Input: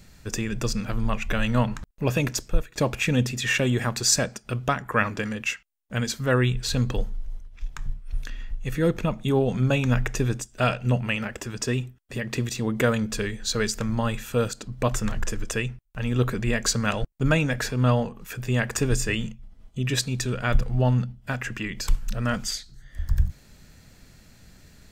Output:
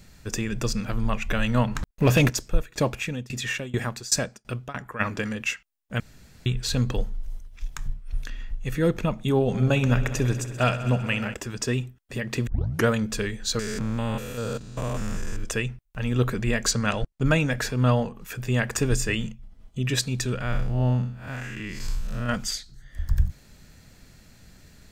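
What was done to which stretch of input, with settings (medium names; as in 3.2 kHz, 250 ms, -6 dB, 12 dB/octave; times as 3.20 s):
1.75–2.30 s: waveshaping leveller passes 2
2.88–4.99 s: tremolo saw down 1.8 Hz -> 3.9 Hz, depth 95%
6.00–6.46 s: room tone
7.23–7.88 s: treble shelf 5.3 kHz +9.5 dB
9.35–11.34 s: multi-head delay 65 ms, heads all three, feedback 66%, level -19 dB
12.47 s: tape start 0.40 s
13.59–15.44 s: spectrogram pixelated in time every 200 ms
16.71–17.27 s: low-pass 9.7 kHz
20.41–22.29 s: spectral blur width 163 ms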